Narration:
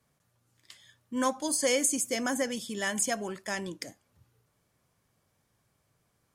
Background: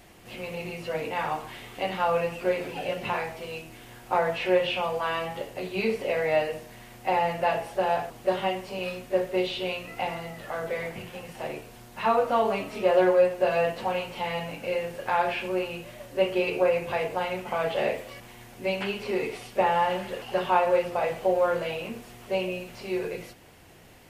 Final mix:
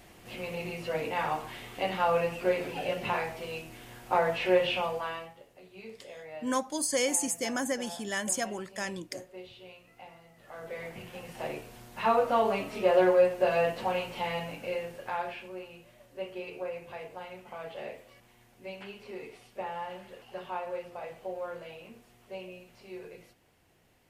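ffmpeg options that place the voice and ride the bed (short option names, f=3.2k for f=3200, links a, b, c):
-filter_complex "[0:a]adelay=5300,volume=-1.5dB[a];[1:a]volume=16dB,afade=t=out:st=4.75:d=0.6:silence=0.125893,afade=t=in:st=10.34:d=1.07:silence=0.133352,afade=t=out:st=14.22:d=1.29:silence=0.251189[b];[a][b]amix=inputs=2:normalize=0"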